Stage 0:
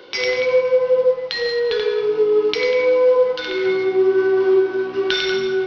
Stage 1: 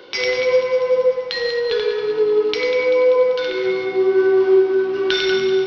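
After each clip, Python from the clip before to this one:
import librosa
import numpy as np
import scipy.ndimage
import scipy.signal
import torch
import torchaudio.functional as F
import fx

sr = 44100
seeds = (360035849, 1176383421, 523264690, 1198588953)

y = fx.rider(x, sr, range_db=10, speed_s=2.0)
y = fx.echo_feedback(y, sr, ms=194, feedback_pct=59, wet_db=-10.5)
y = y * 10.0 ** (-1.0 / 20.0)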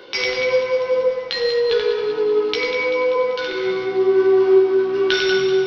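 y = fx.doubler(x, sr, ms=15.0, db=-5.5)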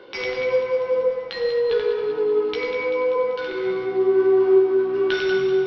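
y = fx.lowpass(x, sr, hz=1600.0, slope=6)
y = y * 10.0 ** (-2.0 / 20.0)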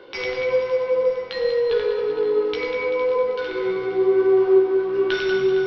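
y = fx.low_shelf(x, sr, hz=68.0, db=6.0)
y = fx.hum_notches(y, sr, base_hz=50, count=5)
y = fx.echo_feedback(y, sr, ms=460, feedback_pct=58, wet_db=-14.0)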